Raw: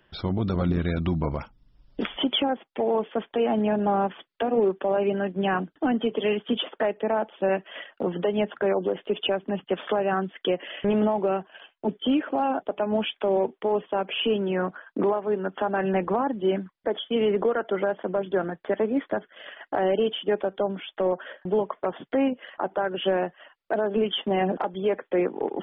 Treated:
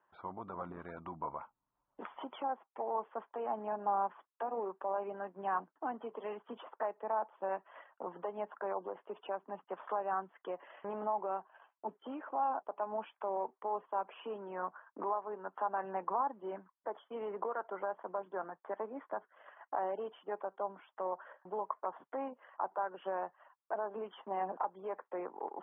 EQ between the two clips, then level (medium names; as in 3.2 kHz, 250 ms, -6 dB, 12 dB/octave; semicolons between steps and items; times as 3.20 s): band-pass filter 1 kHz, Q 3.4; distance through air 480 m; 0.0 dB